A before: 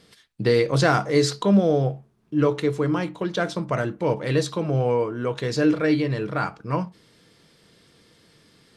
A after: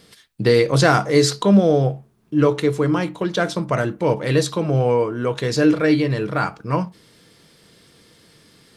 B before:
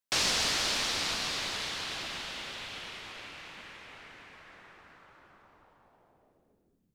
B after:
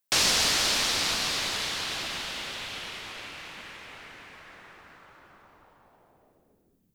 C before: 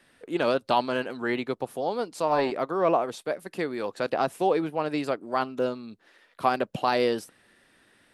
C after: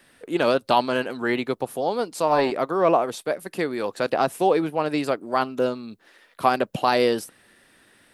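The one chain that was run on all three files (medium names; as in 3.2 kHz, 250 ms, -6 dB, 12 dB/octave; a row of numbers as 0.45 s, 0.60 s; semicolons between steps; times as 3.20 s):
treble shelf 11 kHz +10 dB; trim +4 dB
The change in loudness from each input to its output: +4.0 LU, +5.0 LU, +4.0 LU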